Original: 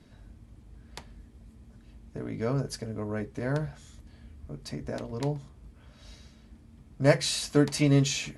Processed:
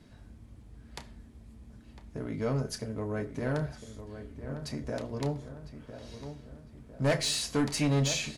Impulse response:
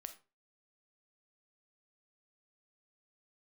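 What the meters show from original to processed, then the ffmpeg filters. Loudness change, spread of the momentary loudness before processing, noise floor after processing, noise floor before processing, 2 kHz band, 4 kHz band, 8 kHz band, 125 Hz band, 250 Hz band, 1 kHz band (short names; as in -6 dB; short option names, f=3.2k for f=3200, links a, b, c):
-3.5 dB, 21 LU, -54 dBFS, -55 dBFS, -2.0 dB, -0.5 dB, -0.5 dB, -3.0 dB, -3.5 dB, -0.5 dB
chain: -filter_complex "[0:a]asoftclip=type=tanh:threshold=-21dB,asplit=2[a][b];[b]adelay=1004,lowpass=f=2k:p=1,volume=-10.5dB,asplit=2[c][d];[d]adelay=1004,lowpass=f=2k:p=1,volume=0.49,asplit=2[e][f];[f]adelay=1004,lowpass=f=2k:p=1,volume=0.49,asplit=2[g][h];[h]adelay=1004,lowpass=f=2k:p=1,volume=0.49,asplit=2[i][j];[j]adelay=1004,lowpass=f=2k:p=1,volume=0.49[k];[a][c][e][g][i][k]amix=inputs=6:normalize=0,asplit=2[l][m];[1:a]atrim=start_sample=2205,adelay=31[n];[m][n]afir=irnorm=-1:irlink=0,volume=-6.5dB[o];[l][o]amix=inputs=2:normalize=0"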